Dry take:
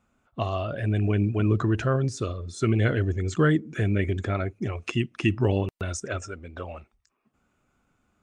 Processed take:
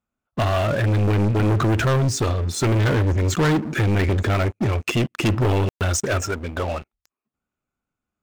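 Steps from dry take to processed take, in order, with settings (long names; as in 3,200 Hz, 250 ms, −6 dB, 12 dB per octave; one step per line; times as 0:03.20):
leveller curve on the samples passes 5
level −5.5 dB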